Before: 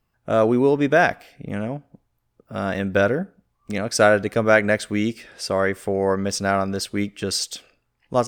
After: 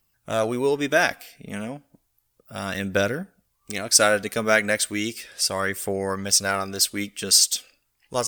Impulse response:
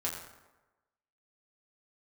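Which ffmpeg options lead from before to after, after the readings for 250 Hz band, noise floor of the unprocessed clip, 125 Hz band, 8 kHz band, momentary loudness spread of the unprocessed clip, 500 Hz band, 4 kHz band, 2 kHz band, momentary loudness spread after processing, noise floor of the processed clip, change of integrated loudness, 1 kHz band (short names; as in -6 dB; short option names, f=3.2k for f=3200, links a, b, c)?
-6.5 dB, -72 dBFS, -6.5 dB, +10.0 dB, 14 LU, -5.0 dB, +7.0 dB, -1.0 dB, 17 LU, -72 dBFS, -0.5 dB, -4.0 dB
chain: -af "crystalizer=i=6.5:c=0,aphaser=in_gain=1:out_gain=1:delay=4.8:decay=0.33:speed=0.34:type=triangular,volume=-7dB"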